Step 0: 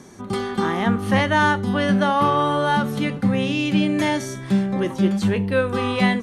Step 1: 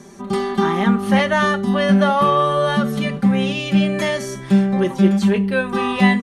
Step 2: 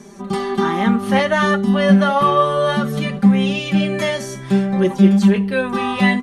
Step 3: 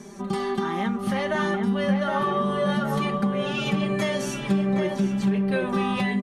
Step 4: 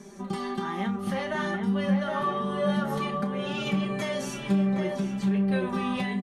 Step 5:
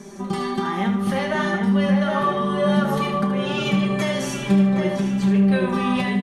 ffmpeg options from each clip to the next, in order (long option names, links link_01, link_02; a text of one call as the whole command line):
ffmpeg -i in.wav -af "aecho=1:1:5.1:0.8" out.wav
ffmpeg -i in.wav -af "flanger=delay=4.7:depth=4.2:regen=51:speed=0.59:shape=sinusoidal,volume=4.5dB" out.wav
ffmpeg -i in.wav -filter_complex "[0:a]acompressor=threshold=-21dB:ratio=6,asplit=2[link_01][link_02];[link_02]adelay=767,lowpass=frequency=2100:poles=1,volume=-3.5dB,asplit=2[link_03][link_04];[link_04]adelay=767,lowpass=frequency=2100:poles=1,volume=0.49,asplit=2[link_05][link_06];[link_06]adelay=767,lowpass=frequency=2100:poles=1,volume=0.49,asplit=2[link_07][link_08];[link_08]adelay=767,lowpass=frequency=2100:poles=1,volume=0.49,asplit=2[link_09][link_10];[link_10]adelay=767,lowpass=frequency=2100:poles=1,volume=0.49,asplit=2[link_11][link_12];[link_12]adelay=767,lowpass=frequency=2100:poles=1,volume=0.49[link_13];[link_01][link_03][link_05][link_07][link_09][link_11][link_13]amix=inputs=7:normalize=0,volume=-2dB" out.wav
ffmpeg -i in.wav -filter_complex "[0:a]flanger=delay=9.9:depth=2.2:regen=60:speed=1.1:shape=triangular,asplit=2[link_01][link_02];[link_02]adelay=32,volume=-12dB[link_03];[link_01][link_03]amix=inputs=2:normalize=0" out.wav
ffmpeg -i in.wav -af "aecho=1:1:76|152|228|304|380:0.355|0.149|0.0626|0.0263|0.011,volume=6.5dB" out.wav